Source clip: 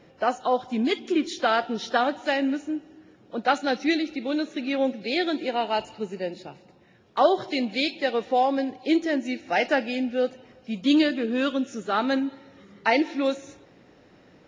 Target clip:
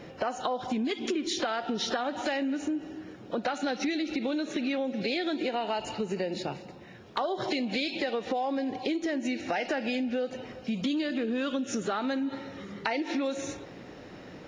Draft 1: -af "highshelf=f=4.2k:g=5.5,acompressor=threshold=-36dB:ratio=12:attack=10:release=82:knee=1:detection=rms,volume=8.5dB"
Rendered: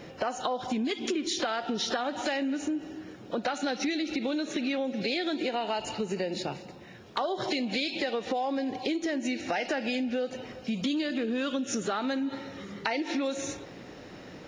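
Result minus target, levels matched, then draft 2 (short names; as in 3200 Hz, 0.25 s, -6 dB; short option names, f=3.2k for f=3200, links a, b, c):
8000 Hz band +3.0 dB
-af "acompressor=threshold=-36dB:ratio=12:attack=10:release=82:knee=1:detection=rms,volume=8.5dB"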